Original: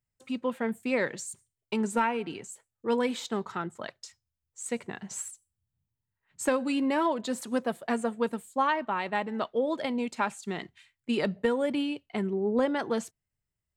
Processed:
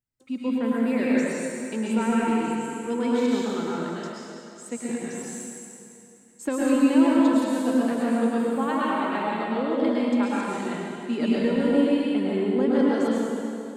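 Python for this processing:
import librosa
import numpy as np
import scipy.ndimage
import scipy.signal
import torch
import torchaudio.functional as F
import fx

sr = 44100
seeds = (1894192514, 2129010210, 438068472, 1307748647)

y = fx.peak_eq(x, sr, hz=280.0, db=9.0, octaves=1.0)
y = fx.rev_plate(y, sr, seeds[0], rt60_s=2.7, hf_ratio=0.95, predelay_ms=95, drr_db=-7.0)
y = y * librosa.db_to_amplitude(-6.0)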